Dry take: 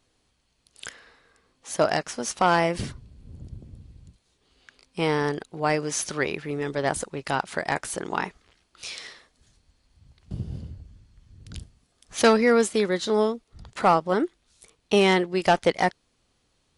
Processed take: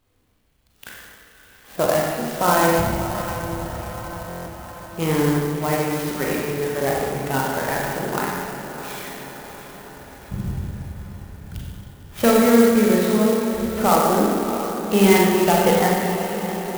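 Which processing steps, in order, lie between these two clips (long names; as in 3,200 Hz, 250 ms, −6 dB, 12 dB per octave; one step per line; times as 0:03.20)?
spectral magnitudes quantised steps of 15 dB
low-pass filter 5,000 Hz 24 dB per octave
low-shelf EQ 240 Hz +6 dB
feedback delay with all-pass diffusion 634 ms, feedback 61%, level −10 dB
four-comb reverb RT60 1.7 s, combs from 30 ms, DRR −3.5 dB
buffer that repeats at 0:04.28, samples 1,024, times 7
converter with an unsteady clock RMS 0.052 ms
level −1 dB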